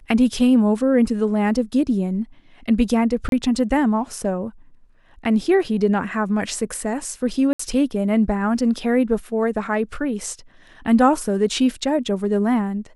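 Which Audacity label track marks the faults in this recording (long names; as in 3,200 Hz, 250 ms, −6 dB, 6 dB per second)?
3.290000	3.320000	drop-out 32 ms
7.530000	7.590000	drop-out 64 ms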